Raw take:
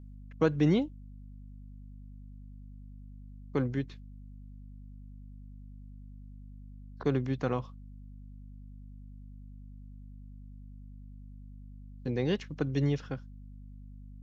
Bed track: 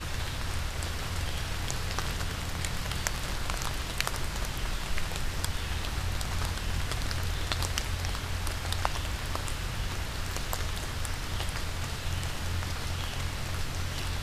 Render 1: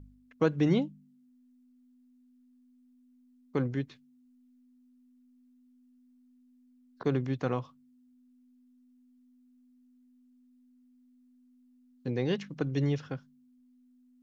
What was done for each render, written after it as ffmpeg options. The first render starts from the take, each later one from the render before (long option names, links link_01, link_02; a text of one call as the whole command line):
ffmpeg -i in.wav -af "bandreject=frequency=50:width_type=h:width=4,bandreject=frequency=100:width_type=h:width=4,bandreject=frequency=150:width_type=h:width=4,bandreject=frequency=200:width_type=h:width=4" out.wav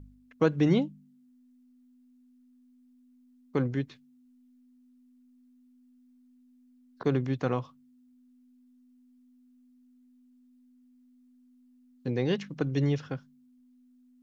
ffmpeg -i in.wav -af "volume=2dB" out.wav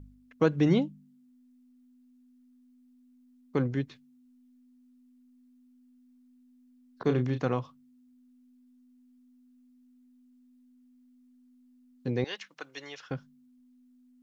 ffmpeg -i in.wav -filter_complex "[0:a]asettb=1/sr,asplit=3[link_01][link_02][link_03];[link_01]atrim=end=7.024[link_04];[link_02]atrim=start=7.02:end=7.46,asetpts=PTS-STARTPTS,afade=type=in:duration=0.004:curve=qsin,afade=type=out:start_time=0.436:duration=0.004:curve=qsin,asplit=2[link_05][link_06];[link_06]adelay=32,volume=-8dB[link_07];[link_05][link_07]amix=inputs=2:normalize=0,atrim=end_sample=19404[link_08];[link_03]atrim=start=7.456[link_09];[link_04][link_08]acrossfade=duration=0.004:curve1=hsin:curve2=qsin[link_10];[link_10][link_09]acrossfade=duration=0.004:curve1=qsin:curve2=hsin,asettb=1/sr,asplit=3[link_11][link_12][link_13];[link_11]atrim=end=12.244[link_14];[link_12]atrim=start=12.24:end=13.11,asetpts=PTS-STARTPTS,afade=type=in:duration=0.004:curve=qsin,afade=type=out:start_time=0.866:duration=0.004:curve=qsin,highpass=1000[link_15];[link_13]atrim=start=13.106[link_16];[link_14][link_15]acrossfade=duration=0.004:curve1=hsin:curve2=qsin[link_17];[link_17][link_16]acrossfade=duration=0.004:curve1=qsin:curve2=hsin" out.wav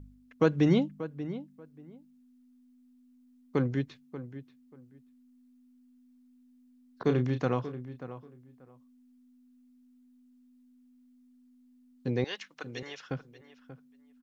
ffmpeg -i in.wav -filter_complex "[0:a]asplit=2[link_01][link_02];[link_02]adelay=585,lowpass=frequency=2200:poles=1,volume=-13dB,asplit=2[link_03][link_04];[link_04]adelay=585,lowpass=frequency=2200:poles=1,volume=0.19[link_05];[link_01][link_03][link_05]amix=inputs=3:normalize=0" out.wav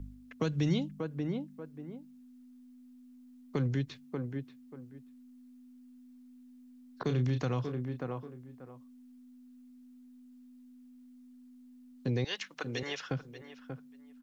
ffmpeg -i in.wav -filter_complex "[0:a]acrossover=split=140|3000[link_01][link_02][link_03];[link_02]acompressor=threshold=-38dB:ratio=3[link_04];[link_01][link_04][link_03]amix=inputs=3:normalize=0,asplit=2[link_05][link_06];[link_06]alimiter=level_in=8.5dB:limit=-24dB:level=0:latency=1:release=123,volume=-8.5dB,volume=0dB[link_07];[link_05][link_07]amix=inputs=2:normalize=0" out.wav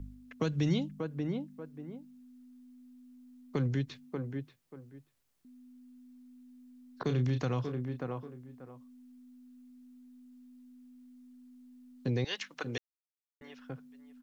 ffmpeg -i in.wav -filter_complex "[0:a]asettb=1/sr,asplit=3[link_01][link_02][link_03];[link_01]atrim=end=4.094[link_04];[link_02]atrim=start=4.09:end=5.45,asetpts=PTS-STARTPTS,afade=type=in:duration=0.004:curve=qsin,afade=type=out:start_time=1.356:duration=0.004:curve=qsin,bandreject=frequency=50:width_type=h:width=6,bandreject=frequency=100:width_type=h:width=6,bandreject=frequency=150:width_type=h:width=6,bandreject=frequency=200:width_type=h:width=6,bandreject=frequency=250:width_type=h:width=6[link_05];[link_03]atrim=start=5.446[link_06];[link_04][link_05]acrossfade=duration=0.004:curve1=hsin:curve2=qsin[link_07];[link_07][link_06]acrossfade=duration=0.004:curve1=qsin:curve2=hsin,asplit=3[link_08][link_09][link_10];[link_08]atrim=end=12.78,asetpts=PTS-STARTPTS,afade=type=out:start_time=12.776:duration=0.004:curve=hsin[link_11];[link_09]atrim=start=12.78:end=13.41,asetpts=PTS-STARTPTS,volume=0[link_12];[link_10]atrim=start=13.41,asetpts=PTS-STARTPTS,afade=type=in:duration=0.004:curve=hsin[link_13];[link_11][link_12][link_13]concat=n=3:v=0:a=1" out.wav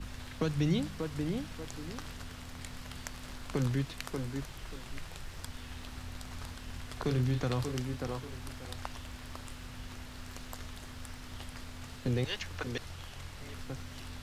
ffmpeg -i in.wav -i bed.wav -filter_complex "[1:a]volume=-12dB[link_01];[0:a][link_01]amix=inputs=2:normalize=0" out.wav